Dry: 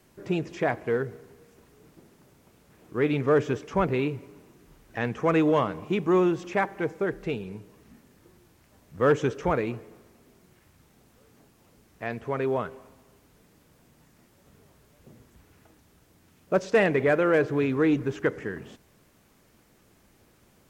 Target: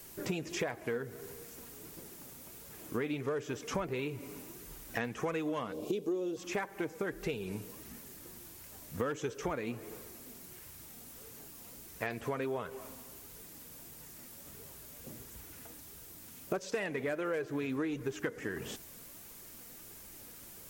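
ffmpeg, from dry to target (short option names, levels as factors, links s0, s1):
-filter_complex "[0:a]asettb=1/sr,asplit=3[s0][s1][s2];[s0]atrim=end=5.724[s3];[s1]atrim=start=5.72:end=6.37,asetpts=PTS-STARTPTS,afade=t=in:d=0.004:c=qsin,afade=t=out:st=0.646:d=0.004:c=qsin,equalizer=f=125:t=o:w=1:g=-10,equalizer=f=250:t=o:w=1:g=4,equalizer=f=500:t=o:w=1:g=11,equalizer=f=1000:t=o:w=1:g=-9,equalizer=f=2000:t=o:w=1:g=-11,equalizer=f=4000:t=o:w=1:g=6[s4];[s2]atrim=start=6.366[s5];[s3][s4]acrossfade=d=0.004:c1=hsin:c2=qsin[s6];[s6][s5]acrossfade=d=0.004:c1=qsin:c2=hsin,flanger=delay=1.8:depth=2.6:regen=59:speed=1.5:shape=triangular,aemphasis=mode=production:type=75kf,acompressor=threshold=0.0112:ratio=12,volume=2.24"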